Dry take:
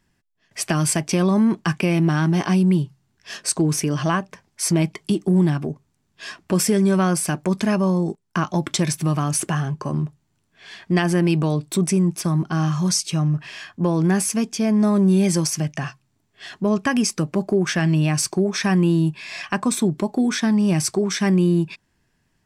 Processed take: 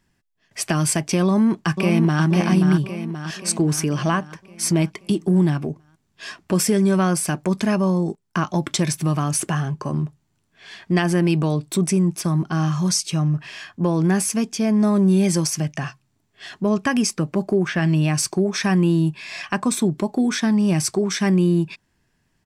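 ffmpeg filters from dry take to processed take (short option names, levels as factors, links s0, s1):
-filter_complex "[0:a]asplit=2[s0][s1];[s1]afade=t=in:st=1.24:d=0.01,afade=t=out:st=2.24:d=0.01,aecho=0:1:530|1060|1590|2120|2650|3180|3710:0.501187|0.275653|0.151609|0.083385|0.0458618|0.025224|0.0138732[s2];[s0][s2]amix=inputs=2:normalize=0,asettb=1/sr,asplit=3[s3][s4][s5];[s3]atrim=end=17.164[s6];[s4]atrim=start=17.16:end=17.82,asetpts=PTS-STARTPTS,afade=t=in:d=0.004:c=qsin,afade=t=out:st=0.656:d=0.004:c=qsin,acrossover=split=3400[s7][s8];[s8]acompressor=threshold=0.00708:ratio=4:attack=1:release=60[s9];[s7][s9]amix=inputs=2:normalize=0[s10];[s5]atrim=start=17.816[s11];[s6][s10]acrossfade=d=0.004:c1=hsin:c2=qsin[s12];[s12][s11]acrossfade=d=0.004:c1=qsin:c2=hsin"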